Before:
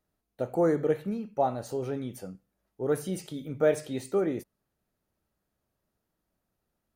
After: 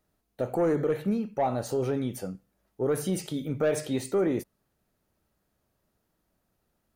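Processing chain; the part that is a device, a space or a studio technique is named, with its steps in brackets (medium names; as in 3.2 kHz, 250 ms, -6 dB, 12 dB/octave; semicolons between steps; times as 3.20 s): soft clipper into limiter (saturation -18.5 dBFS, distortion -17 dB; peak limiter -24.5 dBFS, peak gain reduction 5.5 dB); trim +5.5 dB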